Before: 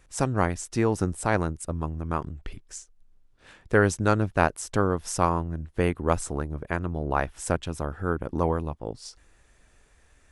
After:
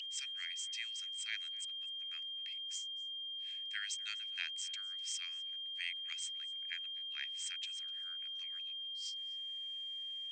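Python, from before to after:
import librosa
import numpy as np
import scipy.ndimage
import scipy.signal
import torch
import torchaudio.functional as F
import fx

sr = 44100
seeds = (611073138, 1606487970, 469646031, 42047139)

p1 = fx.vibrato(x, sr, rate_hz=3.9, depth_cents=24.0)
p2 = scipy.signal.sosfilt(scipy.signal.cheby1(8, 1.0, 8400.0, 'lowpass', fs=sr, output='sos'), p1)
p3 = fx.rider(p2, sr, range_db=5, speed_s=2.0)
p4 = p2 + (p3 * 10.0 ** (-2.0 / 20.0))
p5 = p4 + 10.0 ** (-32.0 / 20.0) * np.sin(2.0 * np.pi * 3200.0 * np.arange(len(p4)) / sr)
p6 = scipy.signal.sosfilt(scipy.signal.butter(8, 2000.0, 'highpass', fs=sr, output='sos'), p5)
p7 = fx.high_shelf(p6, sr, hz=5900.0, db=-7.0)
p8 = p7 + fx.echo_single(p7, sr, ms=250, db=-23.5, dry=0)
p9 = fx.doppler_dist(p8, sr, depth_ms=0.72)
y = p9 * 10.0 ** (-8.0 / 20.0)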